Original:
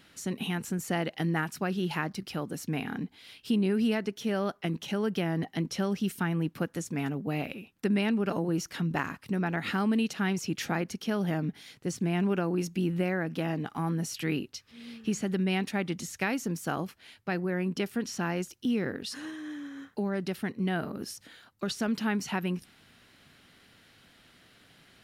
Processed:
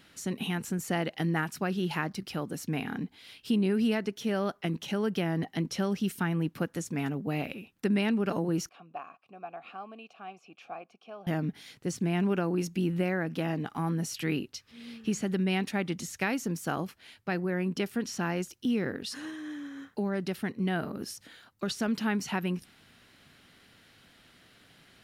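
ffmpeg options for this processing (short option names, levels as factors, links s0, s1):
-filter_complex "[0:a]asettb=1/sr,asplit=3[s0][s1][s2];[s0]atrim=end=8.694[s3];[s1]atrim=start=8.69:end=11.27,asetpts=PTS-STARTPTS,afade=t=in:d=0.004:c=qsin,afade=t=out:st=2.576:d=0.004:c=qsin,asplit=3[s4][s5][s6];[s4]bandpass=f=730:t=q:w=8,volume=1[s7];[s5]bandpass=f=1090:t=q:w=8,volume=0.501[s8];[s6]bandpass=f=2440:t=q:w=8,volume=0.355[s9];[s7][s8][s9]amix=inputs=3:normalize=0[s10];[s2]atrim=start=11.266[s11];[s3][s10]acrossfade=d=0.004:c1=hsin:c2=qsin[s12];[s12][s11]acrossfade=d=0.004:c1=qsin:c2=hsin"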